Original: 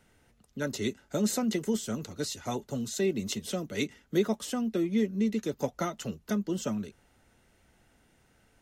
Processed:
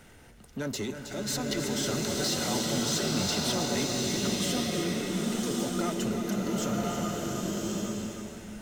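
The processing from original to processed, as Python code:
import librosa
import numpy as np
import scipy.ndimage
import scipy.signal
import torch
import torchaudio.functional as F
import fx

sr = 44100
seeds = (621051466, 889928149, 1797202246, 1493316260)

p1 = fx.spec_box(x, sr, start_s=1.04, length_s=2.57, low_hz=520.0, high_hz=6300.0, gain_db=6)
p2 = fx.over_compress(p1, sr, threshold_db=-32.0, ratio=-1.0)
p3 = fx.power_curve(p2, sr, exponent=0.7)
p4 = p3 + fx.echo_single(p3, sr, ms=318, db=-9.0, dry=0)
p5 = fx.rev_bloom(p4, sr, seeds[0], attack_ms=1160, drr_db=-3.0)
y = p5 * librosa.db_to_amplitude(-5.5)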